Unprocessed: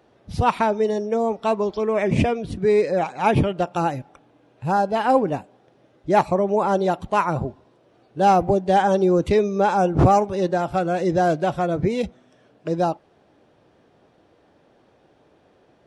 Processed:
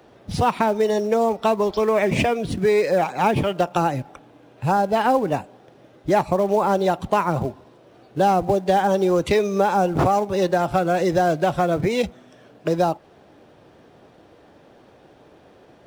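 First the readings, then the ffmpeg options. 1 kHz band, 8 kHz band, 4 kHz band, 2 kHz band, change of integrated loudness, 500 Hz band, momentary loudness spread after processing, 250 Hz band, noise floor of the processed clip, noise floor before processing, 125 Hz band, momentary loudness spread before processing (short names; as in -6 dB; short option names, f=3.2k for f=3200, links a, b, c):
0.0 dB, +4.0 dB, +3.5 dB, +2.0 dB, 0.0 dB, +0.5 dB, 7 LU, -0.5 dB, -52 dBFS, -59 dBFS, -1.5 dB, 10 LU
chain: -filter_complex "[0:a]acrossover=split=90|550[a][b][c];[a]acompressor=threshold=-47dB:ratio=4[d];[b]acompressor=threshold=-30dB:ratio=4[e];[c]acompressor=threshold=-27dB:ratio=4[f];[d][e][f]amix=inputs=3:normalize=0,asplit=2[g][h];[h]acrusher=bits=3:mode=log:mix=0:aa=0.000001,volume=-11dB[i];[g][i]amix=inputs=2:normalize=0,volume=5dB"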